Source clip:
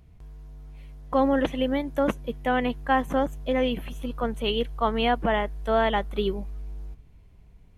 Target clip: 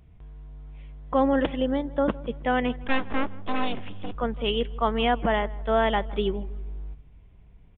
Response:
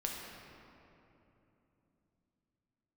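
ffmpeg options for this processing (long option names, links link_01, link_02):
-filter_complex "[0:a]asettb=1/sr,asplit=3[link_01][link_02][link_03];[link_01]atrim=end=1.564[link_04];[link_02]atrim=start=1.56:end=2.12,asetpts=PTS-STARTPTS,afade=type=in:duration=0.004:curve=qsin,afade=type=out:start_time=0.556:duration=0.004:curve=qsin,equalizer=frequency=2300:width_type=o:width=0.5:gain=-10.5[link_05];[link_03]atrim=start=2.116[link_06];[link_04][link_05]acrossfade=duration=0.004:curve1=hsin:curve2=qsin[link_07];[link_07][link_06]acrossfade=duration=0.004:curve1=qsin:curve2=hsin,asettb=1/sr,asplit=3[link_08][link_09][link_10];[link_08]atrim=end=2.844[link_11];[link_09]atrim=start=2.84:end=4.15,asetpts=PTS-STARTPTS,afade=type=in:duration=0.004:curve=qsin,afade=type=out:start_time=1.306:duration=0.004:curve=qsin,aeval=exprs='abs(val(0))':channel_layout=same[link_12];[link_10]atrim=start=4.146[link_13];[link_11][link_12]acrossfade=duration=0.004:curve1=hsin:curve2=qsin[link_14];[link_14][link_13]acrossfade=duration=0.004:curve1=qsin:curve2=hsin,asplit=2[link_15][link_16];[link_16]adelay=161,lowpass=frequency=1600:poles=1,volume=-19.5dB,asplit=2[link_17][link_18];[link_18]adelay=161,lowpass=frequency=1600:poles=1,volume=0.43,asplit=2[link_19][link_20];[link_20]adelay=161,lowpass=frequency=1600:poles=1,volume=0.43[link_21];[link_17][link_19][link_21]amix=inputs=3:normalize=0[link_22];[link_15][link_22]amix=inputs=2:normalize=0,aresample=8000,aresample=44100"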